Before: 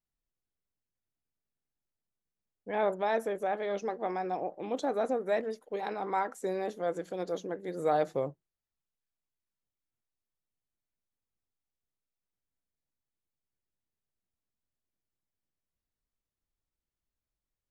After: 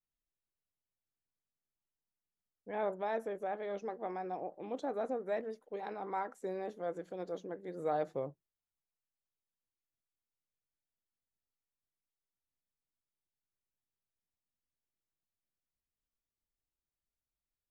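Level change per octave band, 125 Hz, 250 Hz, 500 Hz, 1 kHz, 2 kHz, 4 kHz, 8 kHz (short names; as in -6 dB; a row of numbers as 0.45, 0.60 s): -6.0 dB, -6.0 dB, -6.0 dB, -6.5 dB, -8.0 dB, under -10 dB, under -10 dB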